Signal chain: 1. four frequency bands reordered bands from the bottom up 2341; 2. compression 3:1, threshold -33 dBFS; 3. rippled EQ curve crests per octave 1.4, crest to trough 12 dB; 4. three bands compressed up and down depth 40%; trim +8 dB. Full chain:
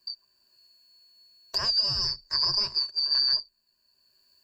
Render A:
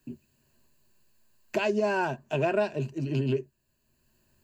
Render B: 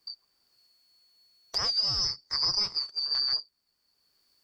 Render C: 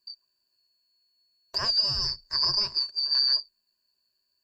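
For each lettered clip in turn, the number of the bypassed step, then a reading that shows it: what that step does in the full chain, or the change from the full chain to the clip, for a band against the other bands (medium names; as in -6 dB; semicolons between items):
1, 4 kHz band -34.5 dB; 3, 8 kHz band +7.0 dB; 4, momentary loudness spread change -2 LU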